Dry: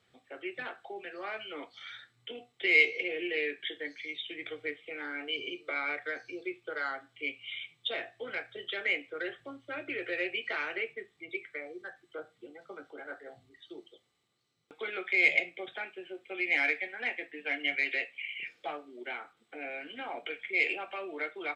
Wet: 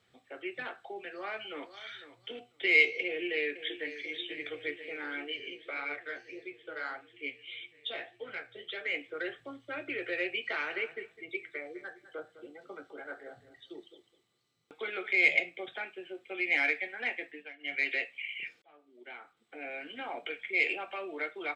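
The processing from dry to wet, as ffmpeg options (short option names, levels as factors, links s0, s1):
-filter_complex "[0:a]asplit=2[s0][s1];[s1]afade=t=in:st=0.94:d=0.01,afade=t=out:st=1.89:d=0.01,aecho=0:1:500|1000:0.211349|0.0317023[s2];[s0][s2]amix=inputs=2:normalize=0,asplit=2[s3][s4];[s4]afade=t=in:st=3.06:d=0.01,afade=t=out:st=3.99:d=0.01,aecho=0:1:490|980|1470|1960|2450|2940|3430|3920|4410|4900|5390|5880:0.251189|0.200951|0.160761|0.128609|0.102887|0.0823095|0.0658476|0.0526781|0.0421425|0.033714|0.0269712|0.0215769[s5];[s3][s5]amix=inputs=2:normalize=0,asplit=3[s6][s7][s8];[s6]afade=t=out:st=5.26:d=0.02[s9];[s7]flanger=delay=6.5:depth=9.7:regen=36:speed=1.7:shape=sinusoidal,afade=t=in:st=5.26:d=0.02,afade=t=out:st=8.93:d=0.02[s10];[s8]afade=t=in:st=8.93:d=0.02[s11];[s9][s10][s11]amix=inputs=3:normalize=0,asettb=1/sr,asplit=3[s12][s13][s14];[s12]atrim=end=10.384[s15];[s13]atrim=start=10.38:end=15.13,asetpts=PTS-STARTPTS,afade=t=in:d=0.004:c=qsin,afade=t=out:st=4.746:d=0.004:c=qsin,aecho=1:1:206|412:0.188|0.0339,atrim=end_sample=209475[s16];[s14]atrim=start=15.126[s17];[s15][s16]acrossfade=d=0.004:c1=hsin:c2=qsin[s18];[s18][s17]acrossfade=d=0.004:c1=qsin:c2=hsin,asplit=4[s19][s20][s21][s22];[s19]atrim=end=17.53,asetpts=PTS-STARTPTS,afade=t=out:st=17.29:d=0.24:silence=0.105925[s23];[s20]atrim=start=17.53:end=17.58,asetpts=PTS-STARTPTS,volume=0.106[s24];[s21]atrim=start=17.58:end=18.62,asetpts=PTS-STARTPTS,afade=t=in:d=0.24:silence=0.105925,afade=t=out:st=1.036:d=0.004:c=hsin[s25];[s22]atrim=start=18.62,asetpts=PTS-STARTPTS,afade=t=in:d=1.21[s26];[s23][s24][s25][s26]concat=n=4:v=0:a=1"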